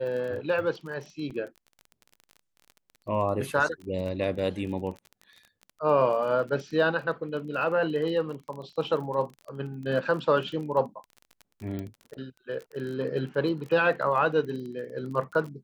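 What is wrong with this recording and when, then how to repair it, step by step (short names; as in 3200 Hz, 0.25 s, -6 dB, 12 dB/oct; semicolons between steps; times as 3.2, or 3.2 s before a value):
crackle 25/s -36 dBFS
1.3–1.31 gap 6.5 ms
11.79 pop -23 dBFS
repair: de-click; interpolate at 1.3, 6.5 ms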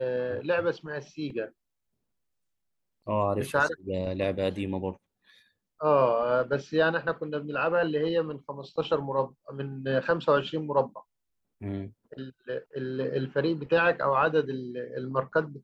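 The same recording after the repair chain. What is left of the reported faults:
none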